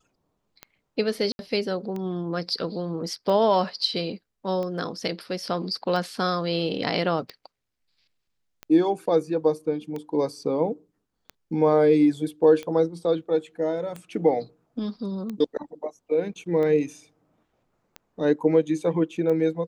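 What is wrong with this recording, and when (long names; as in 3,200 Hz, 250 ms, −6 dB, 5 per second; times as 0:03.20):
scratch tick 45 rpm −21 dBFS
0:01.32–0:01.39: drop-out 71 ms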